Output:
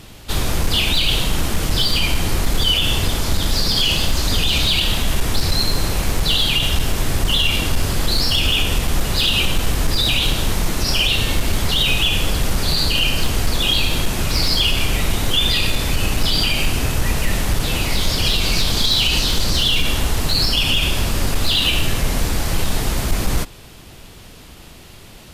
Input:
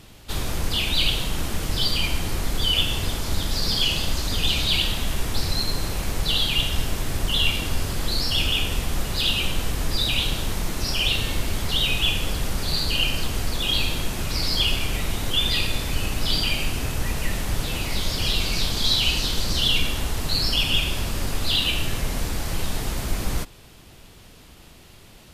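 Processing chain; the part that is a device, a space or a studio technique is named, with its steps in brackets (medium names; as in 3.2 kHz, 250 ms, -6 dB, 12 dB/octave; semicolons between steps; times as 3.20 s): limiter into clipper (peak limiter -13.5 dBFS, peak gain reduction 6.5 dB; hard clipper -16.5 dBFS, distortion -25 dB); trim +7 dB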